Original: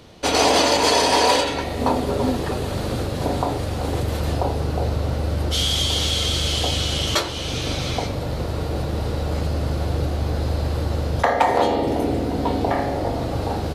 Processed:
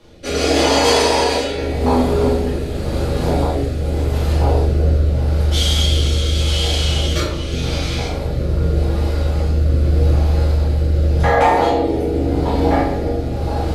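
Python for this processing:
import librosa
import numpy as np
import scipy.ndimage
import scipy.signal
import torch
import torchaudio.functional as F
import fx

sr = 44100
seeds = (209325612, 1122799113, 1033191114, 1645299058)

p1 = fx.wow_flutter(x, sr, seeds[0], rate_hz=2.1, depth_cents=15.0)
p2 = p1 + fx.room_flutter(p1, sr, wall_m=6.2, rt60_s=0.2, dry=0)
p3 = fx.room_shoebox(p2, sr, seeds[1], volume_m3=99.0, walls='mixed', distance_m=2.2)
p4 = fx.rotary(p3, sr, hz=0.85)
y = p4 * 10.0 ** (-5.5 / 20.0)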